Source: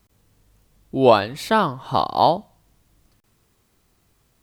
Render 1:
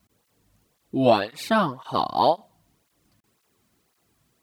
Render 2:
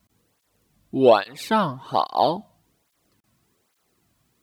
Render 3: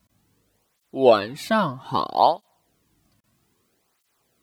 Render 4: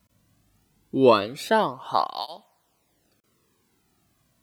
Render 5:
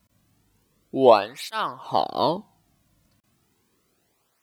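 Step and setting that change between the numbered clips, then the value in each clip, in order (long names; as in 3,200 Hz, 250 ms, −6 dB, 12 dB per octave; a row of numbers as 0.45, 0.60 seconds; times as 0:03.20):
through-zero flanger with one copy inverted, nulls at: 1.9, 1.2, 0.62, 0.22, 0.33 Hertz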